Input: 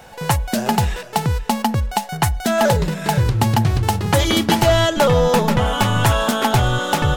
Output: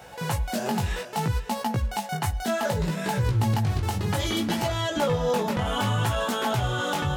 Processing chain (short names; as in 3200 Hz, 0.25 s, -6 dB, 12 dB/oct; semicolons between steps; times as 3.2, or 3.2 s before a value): HPF 57 Hz; limiter -15 dBFS, peak gain reduction 10 dB; chorus 0.63 Hz, delay 16 ms, depth 5.5 ms